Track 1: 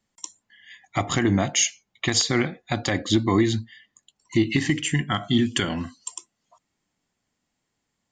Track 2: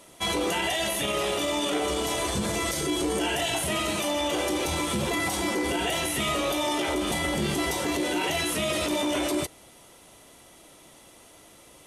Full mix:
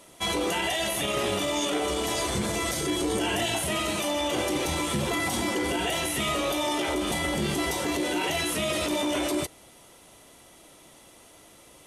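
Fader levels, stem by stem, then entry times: -16.0, -0.5 dB; 0.00, 0.00 s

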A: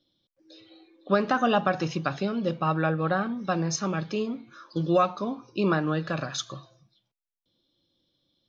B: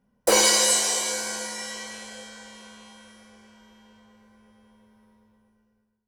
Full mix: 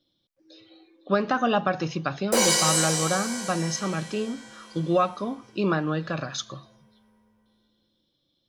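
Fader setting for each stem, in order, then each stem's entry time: 0.0, -3.0 dB; 0.00, 2.05 s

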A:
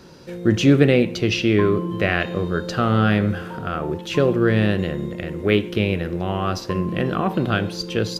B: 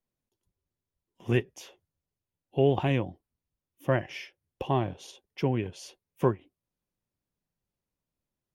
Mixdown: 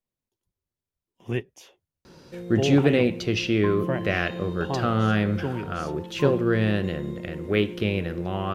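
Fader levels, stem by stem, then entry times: -4.5, -2.5 dB; 2.05, 0.00 s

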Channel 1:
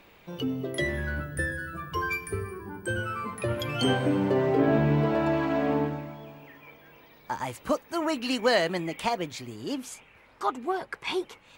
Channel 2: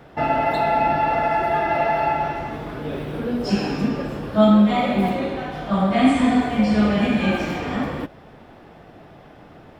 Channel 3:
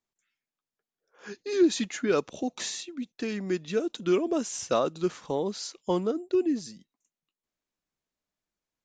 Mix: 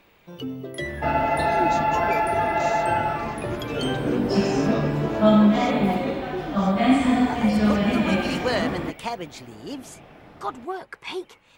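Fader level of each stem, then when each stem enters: -2.0, -2.0, -8.0 dB; 0.00, 0.85, 0.00 s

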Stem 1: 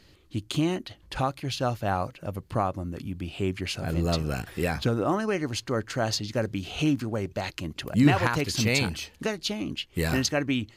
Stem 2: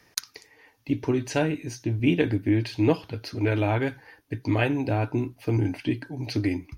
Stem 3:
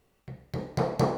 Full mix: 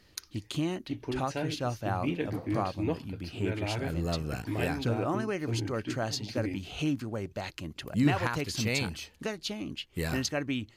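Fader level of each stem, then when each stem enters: -5.5, -10.0, -16.0 dB; 0.00, 0.00, 1.55 s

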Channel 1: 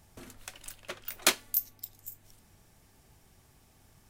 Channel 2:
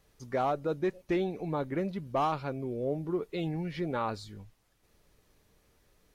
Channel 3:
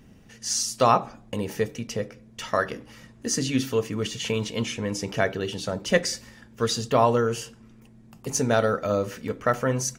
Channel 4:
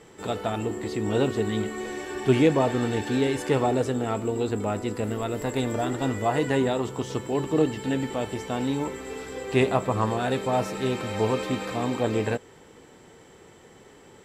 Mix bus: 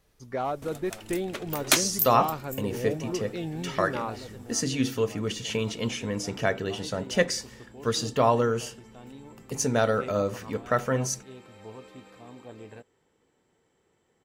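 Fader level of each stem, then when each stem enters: +3.0, -0.5, -2.0, -19.5 dB; 0.45, 0.00, 1.25, 0.45 s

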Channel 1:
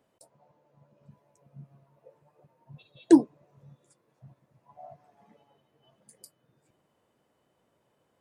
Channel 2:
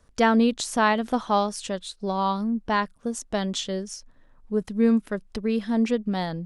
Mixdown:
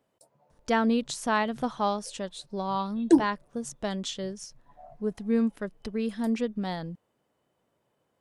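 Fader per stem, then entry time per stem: -2.5, -5.0 dB; 0.00, 0.50 s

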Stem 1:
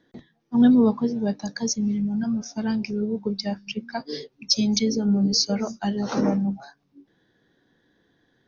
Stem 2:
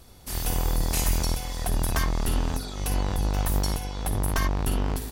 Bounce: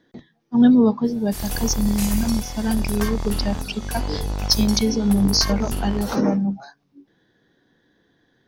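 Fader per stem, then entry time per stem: +2.5, -0.5 dB; 0.00, 1.05 s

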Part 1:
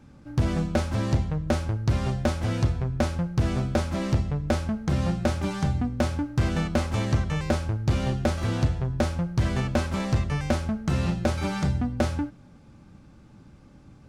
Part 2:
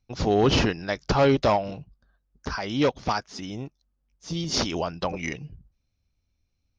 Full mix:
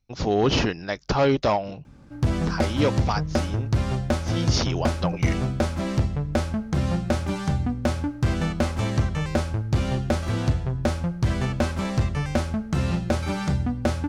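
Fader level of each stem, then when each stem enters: +1.0, -0.5 dB; 1.85, 0.00 s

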